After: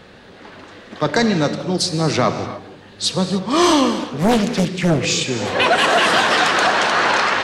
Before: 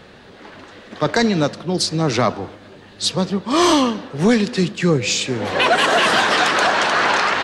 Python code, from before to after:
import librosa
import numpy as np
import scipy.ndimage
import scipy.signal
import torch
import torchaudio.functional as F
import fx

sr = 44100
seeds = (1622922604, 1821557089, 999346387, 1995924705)

y = fx.rev_gated(x, sr, seeds[0], gate_ms=320, shape='flat', drr_db=8.5)
y = fx.doppler_dist(y, sr, depth_ms=0.78, at=(3.99, 5.06))